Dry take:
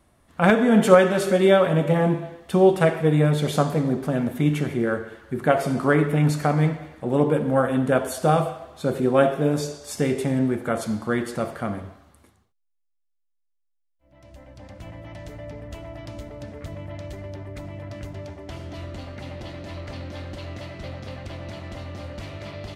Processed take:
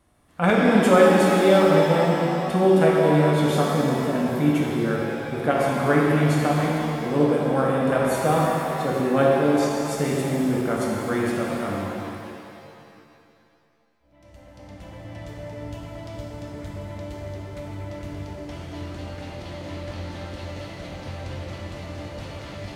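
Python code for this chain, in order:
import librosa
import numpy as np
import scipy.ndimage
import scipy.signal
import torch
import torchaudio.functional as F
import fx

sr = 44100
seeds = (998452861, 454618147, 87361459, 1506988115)

y = fx.rev_shimmer(x, sr, seeds[0], rt60_s=2.6, semitones=7, shimmer_db=-8, drr_db=-2.0)
y = F.gain(torch.from_numpy(y), -3.5).numpy()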